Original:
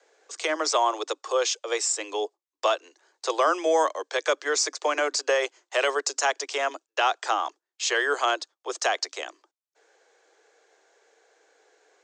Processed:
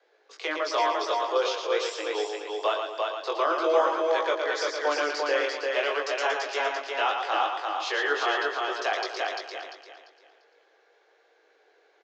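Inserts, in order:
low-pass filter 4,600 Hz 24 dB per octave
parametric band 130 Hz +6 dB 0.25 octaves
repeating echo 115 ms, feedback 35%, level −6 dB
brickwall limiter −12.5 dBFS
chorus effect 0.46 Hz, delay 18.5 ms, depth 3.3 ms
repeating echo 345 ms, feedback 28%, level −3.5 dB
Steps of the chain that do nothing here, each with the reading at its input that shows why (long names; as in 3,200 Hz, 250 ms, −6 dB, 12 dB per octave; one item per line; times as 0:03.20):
parametric band 130 Hz: nothing at its input below 250 Hz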